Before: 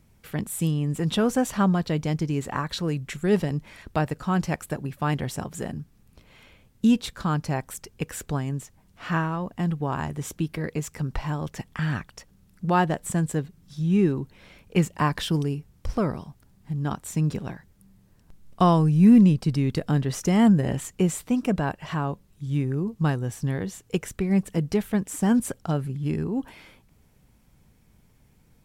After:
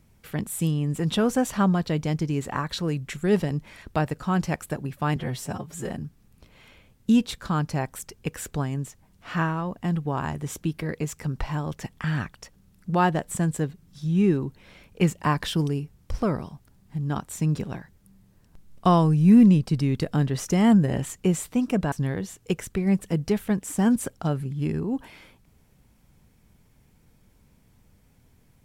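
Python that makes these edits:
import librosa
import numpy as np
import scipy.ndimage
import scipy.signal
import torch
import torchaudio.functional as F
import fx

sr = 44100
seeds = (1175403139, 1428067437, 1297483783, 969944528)

y = fx.edit(x, sr, fx.stretch_span(start_s=5.16, length_s=0.5, factor=1.5),
    fx.cut(start_s=21.67, length_s=1.69), tone=tone)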